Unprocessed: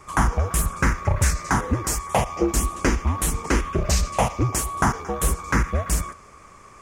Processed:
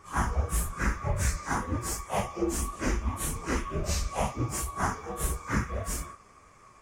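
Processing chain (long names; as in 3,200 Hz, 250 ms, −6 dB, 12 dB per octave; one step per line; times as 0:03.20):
random phases in long frames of 100 ms
level −8 dB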